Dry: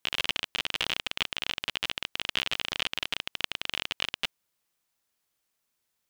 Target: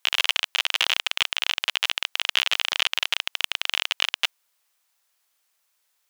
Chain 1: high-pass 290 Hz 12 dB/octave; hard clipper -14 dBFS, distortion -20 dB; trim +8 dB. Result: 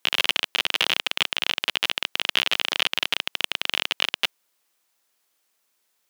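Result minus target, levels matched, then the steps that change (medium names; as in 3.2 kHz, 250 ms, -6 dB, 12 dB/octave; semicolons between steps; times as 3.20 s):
250 Hz band +15.0 dB
change: high-pass 660 Hz 12 dB/octave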